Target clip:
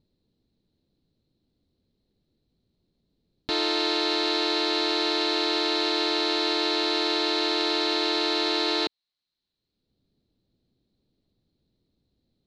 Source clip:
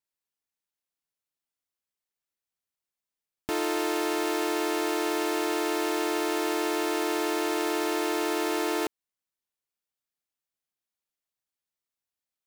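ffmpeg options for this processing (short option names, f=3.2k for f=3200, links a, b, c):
-filter_complex "[0:a]acrossover=split=370[a][b];[a]acompressor=mode=upward:threshold=-47dB:ratio=2.5[c];[c][b]amix=inputs=2:normalize=0,lowpass=f=4.1k:t=q:w=9.5"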